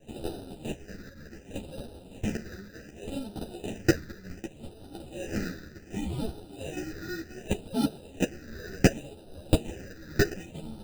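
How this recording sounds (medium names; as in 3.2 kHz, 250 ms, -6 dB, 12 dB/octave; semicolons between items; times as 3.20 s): aliases and images of a low sample rate 1.1 kHz, jitter 0%; phasing stages 6, 0.67 Hz, lowest notch 780–2000 Hz; tremolo triangle 0.61 Hz, depth 65%; a shimmering, thickened sound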